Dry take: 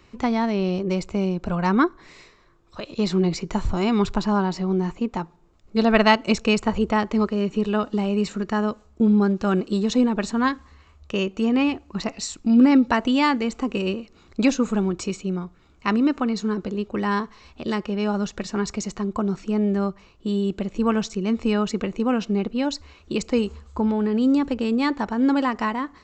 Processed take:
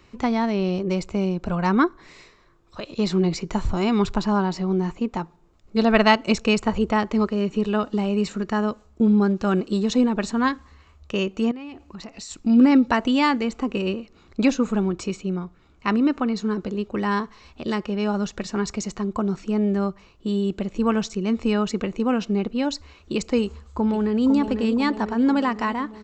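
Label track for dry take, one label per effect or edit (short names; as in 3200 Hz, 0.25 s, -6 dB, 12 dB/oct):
11.510000	12.310000	compressor, threshold -34 dBFS
13.450000	16.500000	high shelf 7100 Hz -7.5 dB
23.430000	24.230000	echo throw 0.5 s, feedback 65%, level -7.5 dB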